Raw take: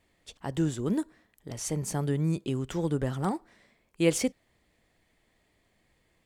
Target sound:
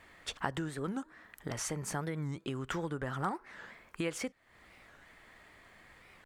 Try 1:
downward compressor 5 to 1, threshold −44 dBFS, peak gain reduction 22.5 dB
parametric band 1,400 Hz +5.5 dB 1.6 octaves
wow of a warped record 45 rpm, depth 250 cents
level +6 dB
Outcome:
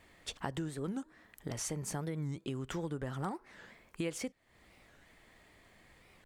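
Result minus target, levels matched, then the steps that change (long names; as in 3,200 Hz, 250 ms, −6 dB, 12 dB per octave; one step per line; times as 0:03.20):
1,000 Hz band −3.5 dB
change: parametric band 1,400 Hz +13.5 dB 1.6 octaves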